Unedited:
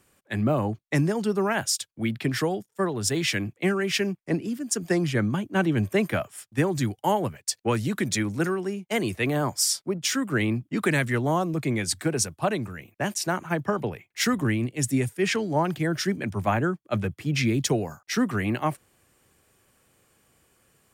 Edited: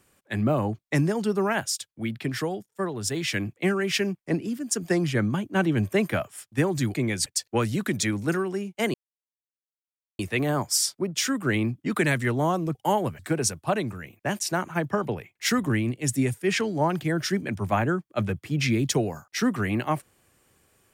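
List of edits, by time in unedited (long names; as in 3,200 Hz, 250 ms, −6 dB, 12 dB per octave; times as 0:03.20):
0:01.60–0:03.34: clip gain −3 dB
0:06.94–0:07.38: swap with 0:11.62–0:11.94
0:09.06: splice in silence 1.25 s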